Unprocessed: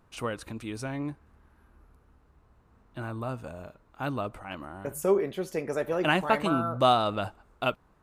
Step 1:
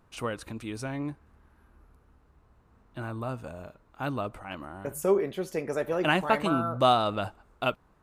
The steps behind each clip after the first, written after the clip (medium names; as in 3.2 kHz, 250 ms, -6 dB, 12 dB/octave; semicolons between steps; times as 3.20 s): no audible change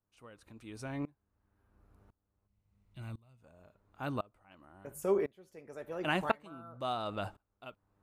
mains buzz 100 Hz, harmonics 9, -63 dBFS -6 dB/octave; time-frequency box 2.47–3.41 s, 220–1900 Hz -11 dB; sawtooth tremolo in dB swelling 0.95 Hz, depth 26 dB; trim -2.5 dB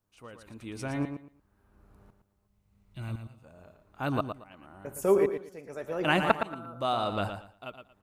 feedback delay 115 ms, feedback 22%, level -8 dB; trim +6.5 dB